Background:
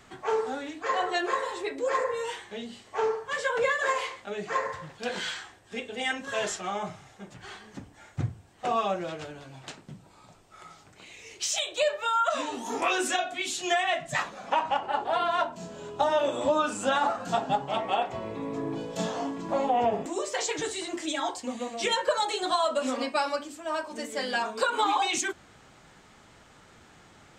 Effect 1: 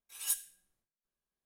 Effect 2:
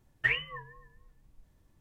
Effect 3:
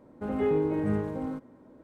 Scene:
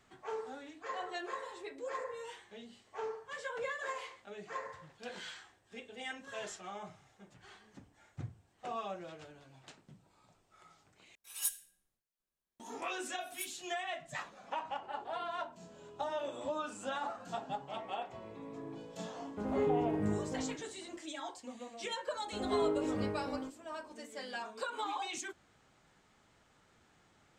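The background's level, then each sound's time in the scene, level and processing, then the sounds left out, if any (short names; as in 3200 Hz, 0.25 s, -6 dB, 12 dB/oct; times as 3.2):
background -13 dB
11.15 replace with 1 -2 dB
13.11 add 1 -11.5 dB
19.16 add 3 -6 dB
22.11 add 3 -5.5 dB + bell 150 Hz -12 dB 0.71 oct
not used: 2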